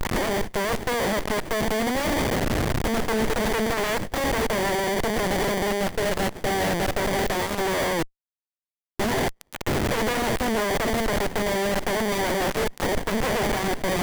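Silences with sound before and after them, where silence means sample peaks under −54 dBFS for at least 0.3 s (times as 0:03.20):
0:08.08–0:09.00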